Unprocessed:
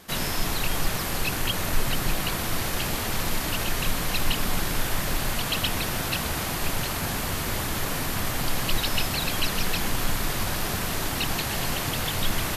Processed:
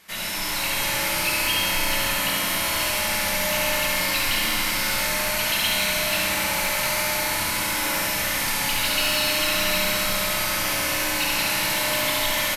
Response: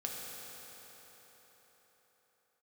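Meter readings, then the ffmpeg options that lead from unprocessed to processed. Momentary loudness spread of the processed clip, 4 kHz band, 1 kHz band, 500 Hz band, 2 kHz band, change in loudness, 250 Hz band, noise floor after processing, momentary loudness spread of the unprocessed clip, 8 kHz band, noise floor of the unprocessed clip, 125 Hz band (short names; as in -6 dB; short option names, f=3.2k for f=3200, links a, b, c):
2 LU, +6.0 dB, +4.0 dB, +4.5 dB, +7.5 dB, +5.5 dB, -1.5 dB, -26 dBFS, 2 LU, +6.0 dB, -29 dBFS, -6.5 dB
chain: -filter_complex "[0:a]tiltshelf=f=740:g=-5.5,aecho=1:1:69|138|207|276|345|414|483|552:0.631|0.353|0.198|0.111|0.0621|0.0347|0.0195|0.0109,flanger=delay=9.9:depth=1.3:regen=-51:speed=0.43:shape=triangular,dynaudnorm=f=150:g=7:m=4dB,equalizer=f=2.2k:t=o:w=0.41:g=7[a];[1:a]atrim=start_sample=2205,asetrate=52920,aresample=44100[b];[a][b]afir=irnorm=-1:irlink=0,asoftclip=type=tanh:threshold=-13.5dB,bandreject=f=50:t=h:w=6,bandreject=f=100:t=h:w=6"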